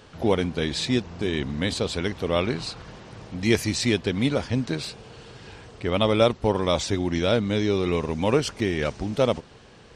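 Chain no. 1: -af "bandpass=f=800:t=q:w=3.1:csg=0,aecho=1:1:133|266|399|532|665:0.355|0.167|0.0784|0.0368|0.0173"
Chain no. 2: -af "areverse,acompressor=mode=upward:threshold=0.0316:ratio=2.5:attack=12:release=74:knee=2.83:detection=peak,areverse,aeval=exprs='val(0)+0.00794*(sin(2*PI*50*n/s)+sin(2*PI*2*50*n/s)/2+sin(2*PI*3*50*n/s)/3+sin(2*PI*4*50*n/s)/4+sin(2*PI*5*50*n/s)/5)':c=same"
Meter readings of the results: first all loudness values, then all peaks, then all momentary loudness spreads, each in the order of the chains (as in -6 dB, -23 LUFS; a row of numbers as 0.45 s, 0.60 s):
-35.5 LUFS, -25.0 LUFS; -14.0 dBFS, -5.5 dBFS; 19 LU, 13 LU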